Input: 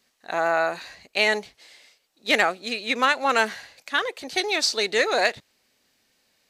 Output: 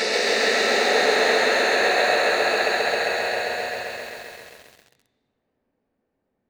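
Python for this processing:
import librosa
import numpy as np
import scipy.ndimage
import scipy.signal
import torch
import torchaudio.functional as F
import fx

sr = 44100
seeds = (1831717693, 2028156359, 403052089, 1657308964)

y = fx.env_lowpass(x, sr, base_hz=670.0, full_db=-19.5)
y = fx.paulstretch(y, sr, seeds[0], factor=5.5, window_s=1.0, from_s=4.88)
y = fx.echo_crushed(y, sr, ms=133, feedback_pct=80, bits=8, wet_db=-3)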